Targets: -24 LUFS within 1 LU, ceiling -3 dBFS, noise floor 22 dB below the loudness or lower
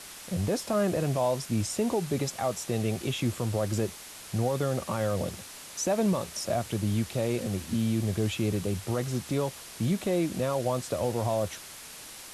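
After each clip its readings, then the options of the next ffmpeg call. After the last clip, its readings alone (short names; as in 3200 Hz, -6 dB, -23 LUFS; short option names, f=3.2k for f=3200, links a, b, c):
noise floor -45 dBFS; noise floor target -52 dBFS; loudness -29.5 LUFS; peak -17.0 dBFS; loudness target -24.0 LUFS
-> -af "afftdn=nr=7:nf=-45"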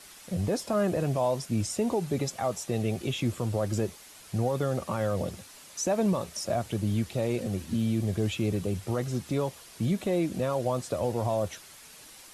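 noise floor -50 dBFS; noise floor target -52 dBFS
-> -af "afftdn=nr=6:nf=-50"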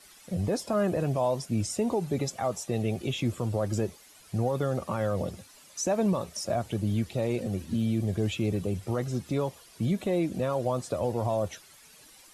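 noise floor -54 dBFS; loudness -30.0 LUFS; peak -17.5 dBFS; loudness target -24.0 LUFS
-> -af "volume=6dB"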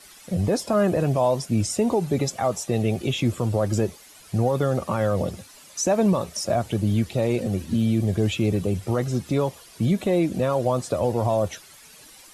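loudness -24.0 LUFS; peak -11.5 dBFS; noise floor -48 dBFS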